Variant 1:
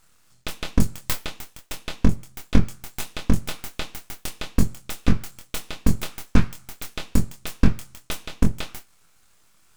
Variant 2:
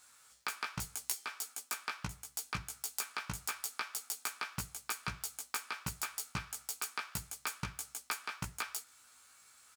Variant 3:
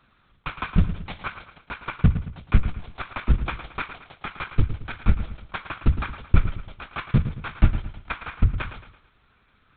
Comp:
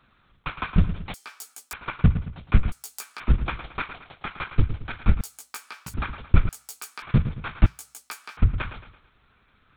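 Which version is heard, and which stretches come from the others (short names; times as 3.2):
3
1.14–1.73 from 2
2.72–3.2 from 2
5.21–5.94 from 2
6.49–7.02 from 2
7.66–8.37 from 2
not used: 1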